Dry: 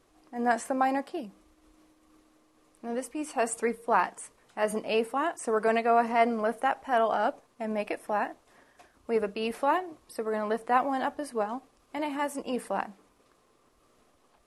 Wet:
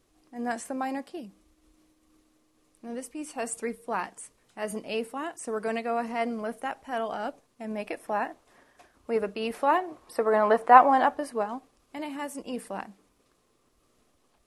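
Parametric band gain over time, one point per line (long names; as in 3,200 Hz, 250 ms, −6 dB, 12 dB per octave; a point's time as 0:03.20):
parametric band 930 Hz 2.7 octaves
0:07.62 −7 dB
0:08.11 0 dB
0:09.54 0 dB
0:10.19 +10.5 dB
0:10.94 +10.5 dB
0:11.35 +1.5 dB
0:12.00 −6 dB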